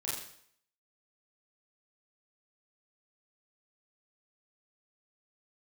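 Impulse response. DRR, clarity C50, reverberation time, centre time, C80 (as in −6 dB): −7.5 dB, 2.0 dB, 0.60 s, 57 ms, 5.0 dB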